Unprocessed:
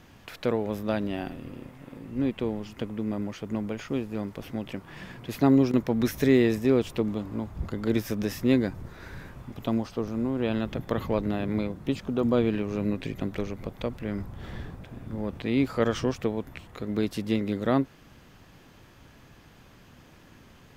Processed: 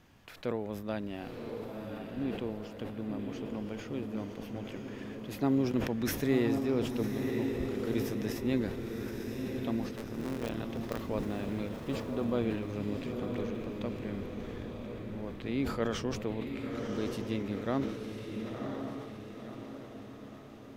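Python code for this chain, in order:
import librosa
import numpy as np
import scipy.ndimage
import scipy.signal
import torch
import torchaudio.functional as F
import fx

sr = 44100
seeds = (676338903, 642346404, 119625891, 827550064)

y = fx.cycle_switch(x, sr, every=3, mode='muted', at=(9.96, 11.01))
y = fx.echo_diffused(y, sr, ms=1026, feedback_pct=51, wet_db=-4.0)
y = fx.sustainer(y, sr, db_per_s=65.0)
y = F.gain(torch.from_numpy(y), -8.5).numpy()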